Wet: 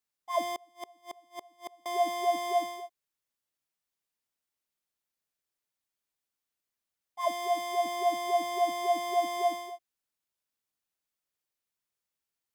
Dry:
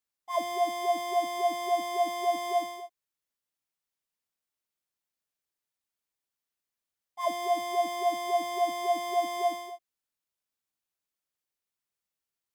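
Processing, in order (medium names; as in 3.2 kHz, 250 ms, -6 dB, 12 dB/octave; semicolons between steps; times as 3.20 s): 0.51–1.86 s: inverted gate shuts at -28 dBFS, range -31 dB; 7.28–7.86 s: bass shelf 420 Hz -6 dB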